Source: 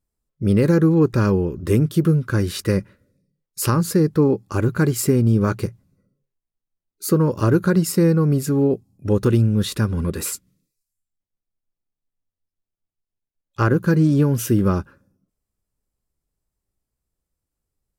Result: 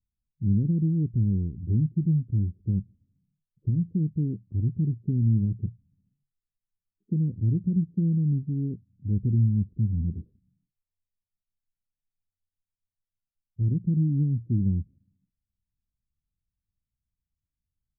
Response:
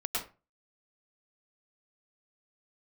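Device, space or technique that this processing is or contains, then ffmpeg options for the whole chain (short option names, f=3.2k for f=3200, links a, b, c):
the neighbour's flat through the wall: -af "lowpass=f=230:w=0.5412,lowpass=f=230:w=1.3066,equalizer=f=88:t=o:w=0.77:g=4,volume=-6dB"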